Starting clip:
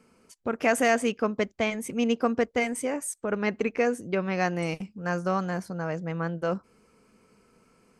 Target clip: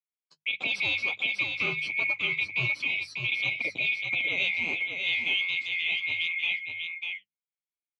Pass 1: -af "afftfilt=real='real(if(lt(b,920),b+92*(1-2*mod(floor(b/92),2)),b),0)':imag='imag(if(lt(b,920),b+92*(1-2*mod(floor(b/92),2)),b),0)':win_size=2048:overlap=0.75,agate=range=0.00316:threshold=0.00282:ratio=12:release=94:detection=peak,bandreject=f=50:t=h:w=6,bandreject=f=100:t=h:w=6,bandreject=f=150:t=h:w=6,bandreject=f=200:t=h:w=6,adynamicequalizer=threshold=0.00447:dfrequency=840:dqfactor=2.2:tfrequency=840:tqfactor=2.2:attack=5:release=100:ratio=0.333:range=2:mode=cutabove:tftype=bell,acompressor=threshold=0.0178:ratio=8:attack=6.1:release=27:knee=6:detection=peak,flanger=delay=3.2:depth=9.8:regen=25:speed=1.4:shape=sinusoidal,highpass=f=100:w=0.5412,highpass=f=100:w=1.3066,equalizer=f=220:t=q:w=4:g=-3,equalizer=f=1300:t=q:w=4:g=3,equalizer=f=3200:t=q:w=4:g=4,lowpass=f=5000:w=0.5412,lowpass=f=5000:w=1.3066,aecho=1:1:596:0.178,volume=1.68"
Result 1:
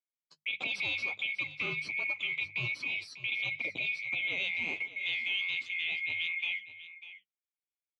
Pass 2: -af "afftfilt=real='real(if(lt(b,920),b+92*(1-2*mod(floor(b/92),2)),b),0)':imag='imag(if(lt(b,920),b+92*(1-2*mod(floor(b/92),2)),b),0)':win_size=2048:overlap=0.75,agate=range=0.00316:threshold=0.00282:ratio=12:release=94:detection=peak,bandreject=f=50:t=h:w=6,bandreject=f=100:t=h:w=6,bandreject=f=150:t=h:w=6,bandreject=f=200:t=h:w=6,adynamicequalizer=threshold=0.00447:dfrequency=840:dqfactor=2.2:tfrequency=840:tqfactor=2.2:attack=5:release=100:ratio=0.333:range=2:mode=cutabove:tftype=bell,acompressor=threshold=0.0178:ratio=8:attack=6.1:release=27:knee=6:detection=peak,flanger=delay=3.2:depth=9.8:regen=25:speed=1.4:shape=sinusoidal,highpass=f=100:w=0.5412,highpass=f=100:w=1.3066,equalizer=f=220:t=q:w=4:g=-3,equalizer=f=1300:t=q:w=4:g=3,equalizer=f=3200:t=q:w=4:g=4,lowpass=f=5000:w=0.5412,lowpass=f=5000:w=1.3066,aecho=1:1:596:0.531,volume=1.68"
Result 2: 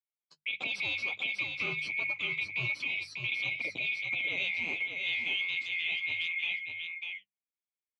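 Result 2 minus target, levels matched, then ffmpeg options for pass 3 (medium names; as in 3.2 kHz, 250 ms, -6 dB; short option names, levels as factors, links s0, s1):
compression: peak gain reduction +5.5 dB
-af "afftfilt=real='real(if(lt(b,920),b+92*(1-2*mod(floor(b/92),2)),b),0)':imag='imag(if(lt(b,920),b+92*(1-2*mod(floor(b/92),2)),b),0)':win_size=2048:overlap=0.75,agate=range=0.00316:threshold=0.00282:ratio=12:release=94:detection=peak,bandreject=f=50:t=h:w=6,bandreject=f=100:t=h:w=6,bandreject=f=150:t=h:w=6,bandreject=f=200:t=h:w=6,adynamicequalizer=threshold=0.00447:dfrequency=840:dqfactor=2.2:tfrequency=840:tqfactor=2.2:attack=5:release=100:ratio=0.333:range=2:mode=cutabove:tftype=bell,acompressor=threshold=0.0376:ratio=8:attack=6.1:release=27:knee=6:detection=peak,flanger=delay=3.2:depth=9.8:regen=25:speed=1.4:shape=sinusoidal,highpass=f=100:w=0.5412,highpass=f=100:w=1.3066,equalizer=f=220:t=q:w=4:g=-3,equalizer=f=1300:t=q:w=4:g=3,equalizer=f=3200:t=q:w=4:g=4,lowpass=f=5000:w=0.5412,lowpass=f=5000:w=1.3066,aecho=1:1:596:0.531,volume=1.68"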